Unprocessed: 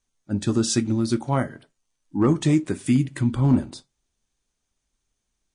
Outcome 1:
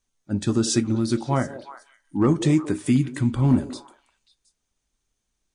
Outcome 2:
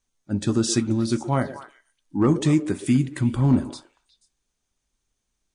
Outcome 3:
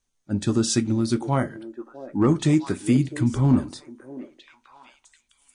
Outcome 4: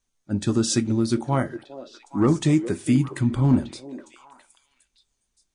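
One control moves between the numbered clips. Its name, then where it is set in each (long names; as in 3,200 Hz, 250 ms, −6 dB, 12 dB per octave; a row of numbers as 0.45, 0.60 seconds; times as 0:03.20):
echo through a band-pass that steps, delay time: 180, 121, 657, 410 milliseconds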